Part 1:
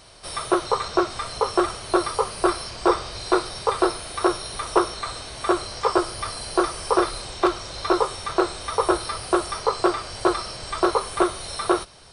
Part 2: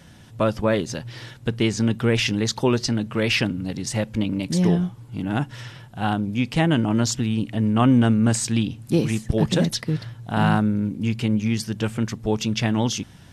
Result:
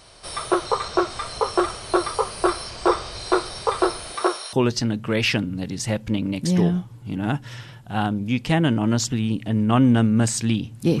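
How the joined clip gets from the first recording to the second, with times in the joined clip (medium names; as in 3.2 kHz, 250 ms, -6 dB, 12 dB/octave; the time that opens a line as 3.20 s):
part 1
4.13–4.53 s: high-pass 160 Hz -> 1 kHz
4.53 s: go over to part 2 from 2.60 s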